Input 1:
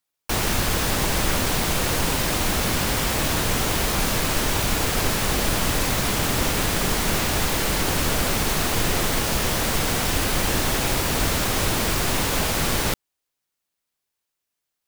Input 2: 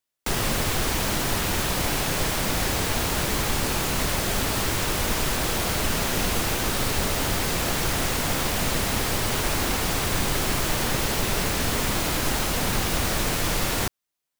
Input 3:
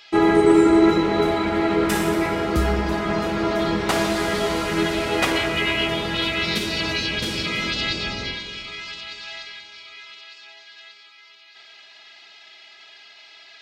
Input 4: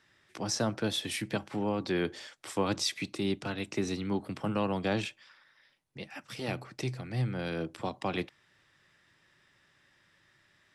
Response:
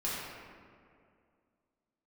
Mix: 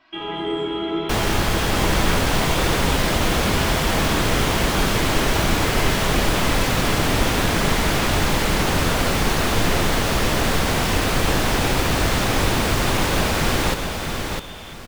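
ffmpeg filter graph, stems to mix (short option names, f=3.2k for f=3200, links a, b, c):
-filter_complex "[0:a]adelay=800,volume=3dB,asplit=2[a][b];[b]volume=-5.5dB[c];[1:a]adelay=850,volume=-15dB[d];[2:a]volume=-8dB,asplit=2[e][f];[f]volume=-7.5dB[g];[d][e]amix=inputs=2:normalize=0,lowpass=f=3.1k:t=q:w=0.5098,lowpass=f=3.1k:t=q:w=0.6013,lowpass=f=3.1k:t=q:w=0.9,lowpass=f=3.1k:t=q:w=2.563,afreqshift=-3600,acompressor=threshold=-32dB:ratio=6,volume=0dB[h];[4:a]atrim=start_sample=2205[i];[g][i]afir=irnorm=-1:irlink=0[j];[c]aecho=0:1:655|1310|1965|2620:1|0.28|0.0784|0.022[k];[a][h][j][k]amix=inputs=4:normalize=0,highshelf=f=5.9k:g=-10"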